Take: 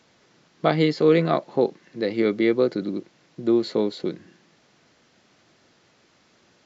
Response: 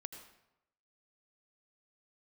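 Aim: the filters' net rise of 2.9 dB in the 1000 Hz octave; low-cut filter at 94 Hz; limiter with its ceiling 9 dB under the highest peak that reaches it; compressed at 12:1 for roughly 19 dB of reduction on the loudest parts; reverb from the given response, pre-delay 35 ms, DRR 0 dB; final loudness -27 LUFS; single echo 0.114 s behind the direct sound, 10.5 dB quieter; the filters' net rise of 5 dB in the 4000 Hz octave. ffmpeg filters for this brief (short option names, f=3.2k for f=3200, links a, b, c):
-filter_complex "[0:a]highpass=94,equalizer=f=1k:t=o:g=4,equalizer=f=4k:t=o:g=5.5,acompressor=threshold=-32dB:ratio=12,alimiter=level_in=5.5dB:limit=-24dB:level=0:latency=1,volume=-5.5dB,aecho=1:1:114:0.299,asplit=2[a][b];[1:a]atrim=start_sample=2205,adelay=35[c];[b][c]afir=irnorm=-1:irlink=0,volume=3.5dB[d];[a][d]amix=inputs=2:normalize=0,volume=10dB"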